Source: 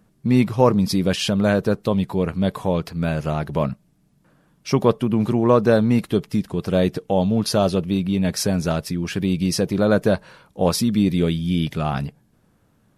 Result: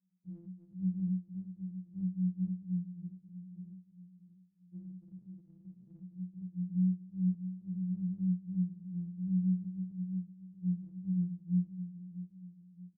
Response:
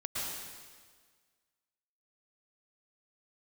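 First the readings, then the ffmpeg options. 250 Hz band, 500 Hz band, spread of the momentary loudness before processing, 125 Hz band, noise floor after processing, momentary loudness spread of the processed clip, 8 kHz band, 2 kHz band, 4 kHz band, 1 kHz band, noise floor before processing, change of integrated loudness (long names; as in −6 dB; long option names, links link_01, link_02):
−14.5 dB, below −40 dB, 8 LU, −13.5 dB, −64 dBFS, 18 LU, below −40 dB, below −40 dB, below −40 dB, below −40 dB, −61 dBFS, −15.5 dB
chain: -filter_complex "[0:a]asuperpass=centerf=220:order=20:qfactor=2.4,asplit=2[link_01][link_02];[link_02]aecho=0:1:631|1262|1893|2524:0.224|0.0963|0.0414|0.0178[link_03];[link_01][link_03]amix=inputs=2:normalize=0,afftfilt=real='re*2.83*eq(mod(b,8),0)':imag='im*2.83*eq(mod(b,8),0)':win_size=2048:overlap=0.75,volume=-7.5dB"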